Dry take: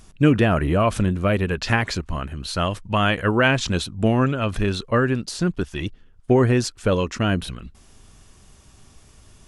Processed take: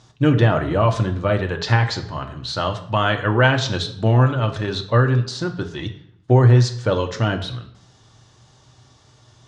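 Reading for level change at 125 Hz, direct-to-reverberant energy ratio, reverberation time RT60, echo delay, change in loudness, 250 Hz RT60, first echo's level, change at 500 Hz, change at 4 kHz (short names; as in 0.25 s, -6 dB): +5.5 dB, 4.0 dB, 0.65 s, none, +2.0 dB, 0.80 s, none, +1.0 dB, +2.0 dB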